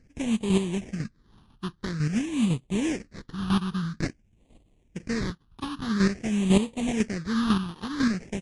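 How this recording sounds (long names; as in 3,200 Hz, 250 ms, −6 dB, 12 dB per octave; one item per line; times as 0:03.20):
chopped level 2 Hz, depth 60%, duty 15%
aliases and images of a low sample rate 1,400 Hz, jitter 20%
phaser sweep stages 6, 0.49 Hz, lowest notch 550–1,500 Hz
MP3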